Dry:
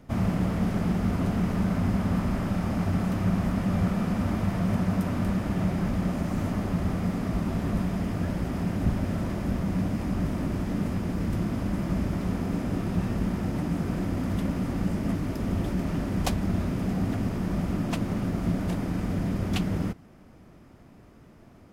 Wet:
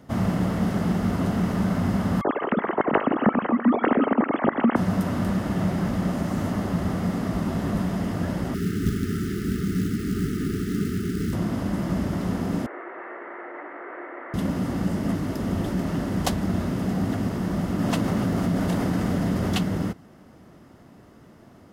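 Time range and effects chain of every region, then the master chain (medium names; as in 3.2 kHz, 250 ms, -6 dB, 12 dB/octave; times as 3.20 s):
2.21–4.76 s: formants replaced by sine waves + multi-head delay 79 ms, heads first and second, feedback 42%, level -17 dB
8.54–11.33 s: high-order bell 610 Hz +9 dB 1.3 oct + companded quantiser 6-bit + brick-wall FIR band-stop 440–1200 Hz
12.66–14.34 s: Chebyshev band-pass 340–2100 Hz, order 4 + tilt shelf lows -7 dB, about 1.1 kHz
17.79–19.63 s: hum notches 50/100/150/200/250/300/350 Hz + level flattener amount 70%
whole clip: high-pass 120 Hz 6 dB/octave; band-stop 2.4 kHz, Q 8.5; trim +4 dB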